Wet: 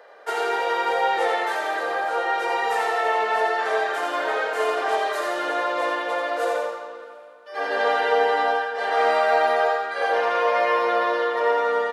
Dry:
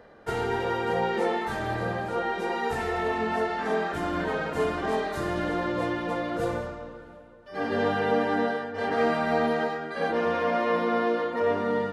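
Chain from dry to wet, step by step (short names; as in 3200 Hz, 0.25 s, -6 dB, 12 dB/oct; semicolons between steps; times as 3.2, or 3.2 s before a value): HPF 490 Hz 24 dB/oct; feedback echo 85 ms, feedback 42%, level -4.5 dB; gain +5.5 dB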